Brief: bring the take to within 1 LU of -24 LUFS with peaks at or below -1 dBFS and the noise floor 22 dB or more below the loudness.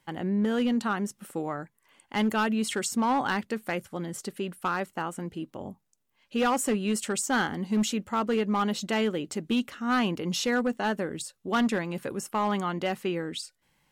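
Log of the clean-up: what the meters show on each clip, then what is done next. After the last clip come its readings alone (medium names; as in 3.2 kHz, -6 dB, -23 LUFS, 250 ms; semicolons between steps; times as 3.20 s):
clipped samples 1.6%; clipping level -20.0 dBFS; loudness -29.0 LUFS; peak level -20.0 dBFS; loudness target -24.0 LUFS
-> clip repair -20 dBFS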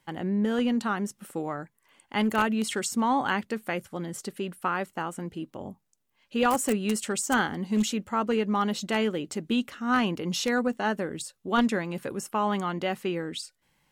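clipped samples 0.0%; loudness -28.5 LUFS; peak level -11.0 dBFS; loudness target -24.0 LUFS
-> trim +4.5 dB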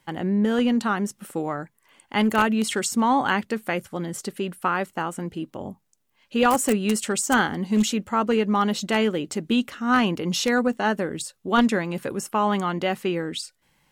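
loudness -24.0 LUFS; peak level -6.5 dBFS; noise floor -69 dBFS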